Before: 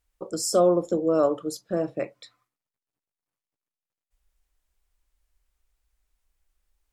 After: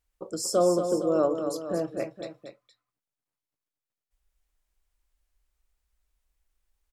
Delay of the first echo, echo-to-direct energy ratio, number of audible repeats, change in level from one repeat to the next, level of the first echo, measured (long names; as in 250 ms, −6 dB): 233 ms, −6.5 dB, 2, −4.5 dB, −8.0 dB